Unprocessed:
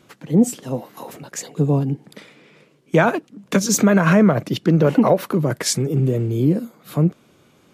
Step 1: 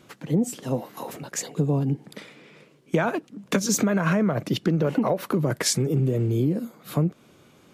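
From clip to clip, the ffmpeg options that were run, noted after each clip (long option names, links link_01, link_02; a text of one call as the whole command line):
ffmpeg -i in.wav -af "acompressor=threshold=-19dB:ratio=6" out.wav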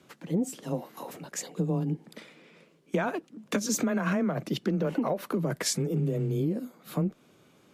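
ffmpeg -i in.wav -af "afreqshift=16,volume=-5.5dB" out.wav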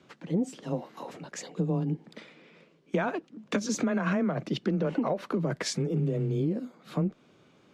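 ffmpeg -i in.wav -af "lowpass=5400" out.wav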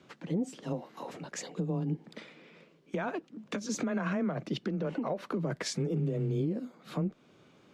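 ffmpeg -i in.wav -af "alimiter=limit=-23dB:level=0:latency=1:release=413" out.wav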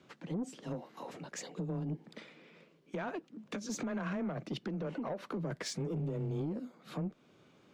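ffmpeg -i in.wav -af "asoftclip=type=tanh:threshold=-27dB,volume=-3dB" out.wav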